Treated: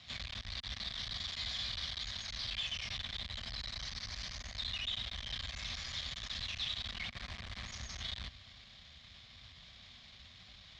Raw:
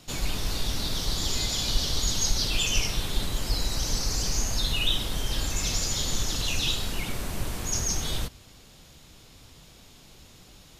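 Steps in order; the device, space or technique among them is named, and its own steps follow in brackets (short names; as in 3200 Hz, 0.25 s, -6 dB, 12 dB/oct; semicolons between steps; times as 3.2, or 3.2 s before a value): scooped metal amplifier (tube stage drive 38 dB, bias 0.65; speaker cabinet 79–3600 Hz, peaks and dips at 140 Hz -6 dB, 240 Hz +9 dB, 460 Hz -9 dB, 890 Hz -9 dB, 1400 Hz -8 dB, 2700 Hz -9 dB; passive tone stack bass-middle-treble 10-0-10); gain +12 dB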